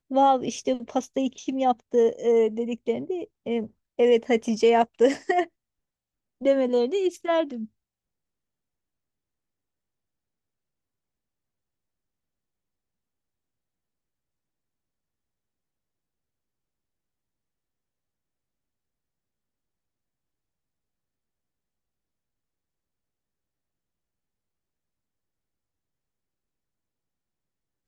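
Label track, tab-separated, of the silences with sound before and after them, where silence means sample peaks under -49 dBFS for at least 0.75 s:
5.480000	6.410000	silence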